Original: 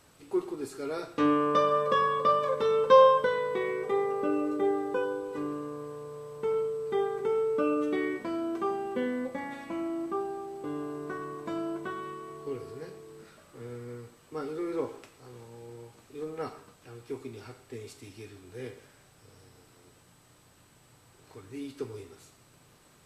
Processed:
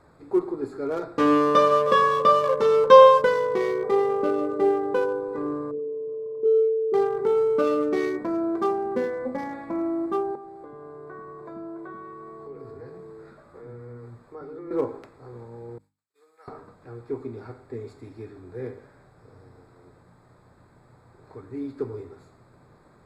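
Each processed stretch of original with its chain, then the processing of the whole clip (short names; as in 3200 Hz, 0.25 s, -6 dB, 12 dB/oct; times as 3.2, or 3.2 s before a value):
5.71–6.94 formant sharpening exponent 3 + doubler 25 ms -6.5 dB
10.35–14.71 compressor 3:1, threshold -43 dBFS + bands offset in time highs, lows 90 ms, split 310 Hz
15.78–16.48 HPF 870 Hz 6 dB/oct + expander -49 dBFS + differentiator
whole clip: Wiener smoothing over 15 samples; notches 50/100/150/200/250/300 Hz; gain +7 dB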